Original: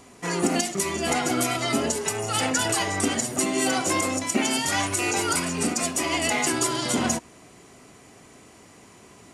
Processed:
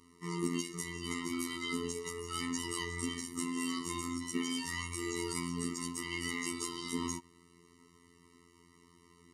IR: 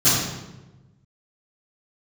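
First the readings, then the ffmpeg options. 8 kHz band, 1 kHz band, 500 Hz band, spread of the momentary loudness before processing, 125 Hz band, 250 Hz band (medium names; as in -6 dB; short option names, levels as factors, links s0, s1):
-15.5 dB, -16.5 dB, -15.0 dB, 3 LU, -10.5 dB, -10.0 dB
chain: -af "afftfilt=real='hypot(re,im)*cos(PI*b)':imag='0':win_size=2048:overlap=0.75,afftfilt=real='re*eq(mod(floor(b*sr/1024/450),2),0)':imag='im*eq(mod(floor(b*sr/1024/450),2),0)':win_size=1024:overlap=0.75,volume=0.422"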